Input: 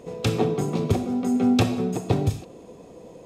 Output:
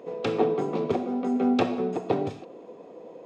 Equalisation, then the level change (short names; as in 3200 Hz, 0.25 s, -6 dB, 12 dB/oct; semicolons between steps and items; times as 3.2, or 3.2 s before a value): HPF 340 Hz 12 dB/oct; tape spacing loss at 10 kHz 28 dB; +3.5 dB